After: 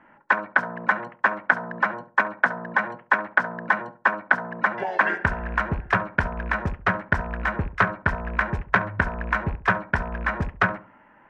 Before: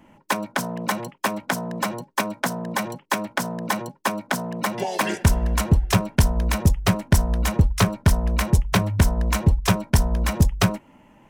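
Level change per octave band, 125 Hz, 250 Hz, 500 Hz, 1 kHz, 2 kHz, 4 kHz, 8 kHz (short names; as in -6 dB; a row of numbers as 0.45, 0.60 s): -10.5 dB, -8.0 dB, -2.5 dB, +2.5 dB, +8.0 dB, -12.5 dB, under -25 dB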